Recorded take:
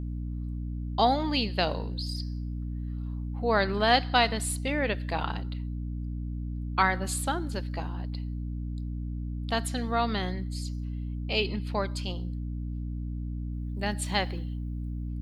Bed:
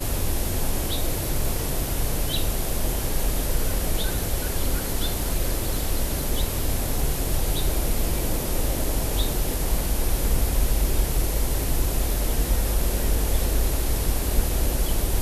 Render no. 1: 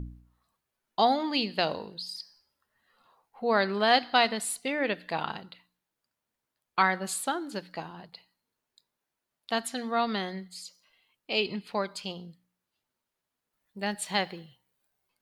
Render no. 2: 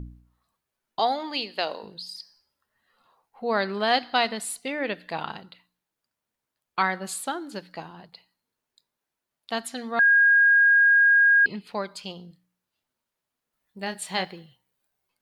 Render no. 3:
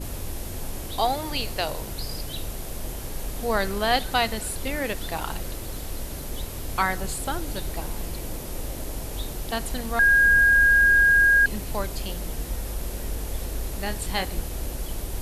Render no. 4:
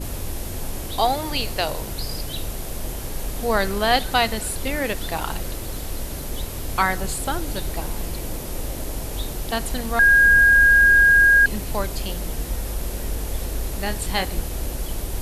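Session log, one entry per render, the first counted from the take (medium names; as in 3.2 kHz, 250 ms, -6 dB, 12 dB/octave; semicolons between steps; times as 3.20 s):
de-hum 60 Hz, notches 5
0.99–1.83 s: high-pass 370 Hz; 9.99–11.46 s: bleep 1.63 kHz -14 dBFS; 12.28–14.25 s: doubling 27 ms -8.5 dB
add bed -8 dB
trim +3.5 dB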